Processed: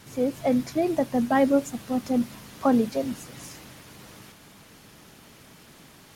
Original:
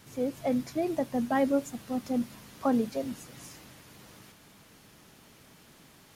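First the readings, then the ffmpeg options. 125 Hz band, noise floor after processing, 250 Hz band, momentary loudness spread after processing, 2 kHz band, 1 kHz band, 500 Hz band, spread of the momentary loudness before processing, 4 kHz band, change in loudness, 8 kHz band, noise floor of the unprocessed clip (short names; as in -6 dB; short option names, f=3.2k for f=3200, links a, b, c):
+5.5 dB, -52 dBFS, +5.5 dB, 17 LU, +5.5 dB, +5.5 dB, +5.5 dB, 17 LU, +5.5 dB, +5.5 dB, +5.0 dB, -57 dBFS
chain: -af "volume=5.5dB" -ar 44100 -c:a nellymoser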